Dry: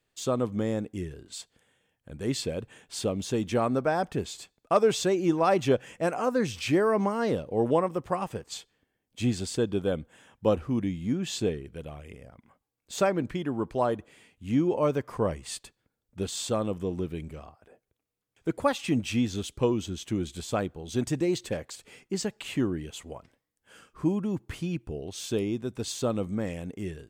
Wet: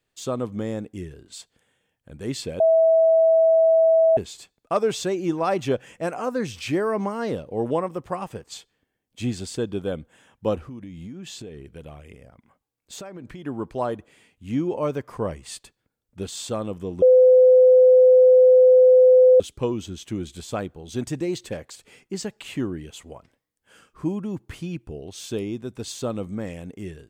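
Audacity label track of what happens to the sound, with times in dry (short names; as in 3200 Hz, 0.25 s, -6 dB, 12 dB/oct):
2.600000	4.170000	bleep 651 Hz -13 dBFS
10.680000	13.460000	compressor 10:1, threshold -34 dBFS
17.020000	19.400000	bleep 509 Hz -9.5 dBFS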